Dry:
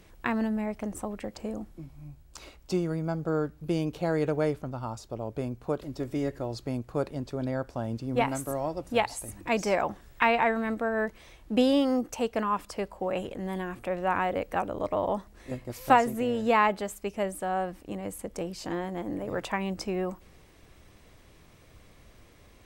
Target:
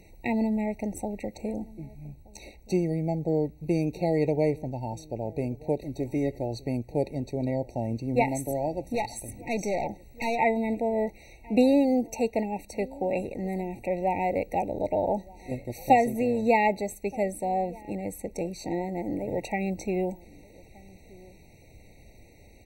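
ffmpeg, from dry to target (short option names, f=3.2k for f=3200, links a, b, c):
-filter_complex "[0:a]asplit=2[a][b];[b]adelay=1224,volume=-23dB,highshelf=f=4k:g=-27.6[c];[a][c]amix=inputs=2:normalize=0,asettb=1/sr,asplit=3[d][e][f];[d]atrim=end=8.954[g];[e]atrim=start=8.95:end=10.39,asetpts=PTS-STARTPTS,afade=t=in:d=0.004:c=qsin,afade=t=out:st=1.436:d=0.004:c=qsin,aeval=exprs='(tanh(20*val(0)+0.3)-tanh(0.3))/20':c=same[h];[f]atrim=start=10.386[i];[g][h]acrossfade=d=0.004:c1=hsin:c2=qsin[j];[j][i]acrossfade=d=0.004:c1=qsin:c2=hsin,afftfilt=real='re*eq(mod(floor(b*sr/1024/930),2),0)':imag='im*eq(mod(floor(b*sr/1024/930),2),0)':win_size=1024:overlap=0.75,volume=2.5dB"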